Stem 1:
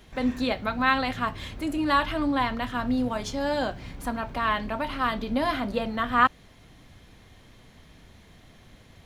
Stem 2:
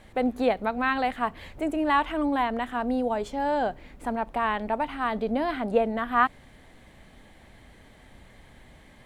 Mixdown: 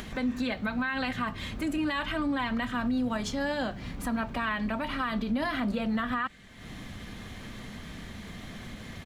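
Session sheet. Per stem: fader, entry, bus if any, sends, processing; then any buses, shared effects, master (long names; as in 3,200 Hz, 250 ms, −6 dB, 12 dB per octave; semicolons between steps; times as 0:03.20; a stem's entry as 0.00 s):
+3.0 dB, 0.00 s, no send, downward compressor 1.5 to 1, threshold −43 dBFS, peak gain reduction 10.5 dB; hollow resonant body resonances 210/1,200 Hz, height 8 dB
+0.5 dB, 0.00 s, no send, elliptic band-pass filter 1,500–7,800 Hz; comb filter 5.2 ms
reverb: not used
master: upward compression, threshold −34 dBFS; brickwall limiter −22 dBFS, peak gain reduction 13 dB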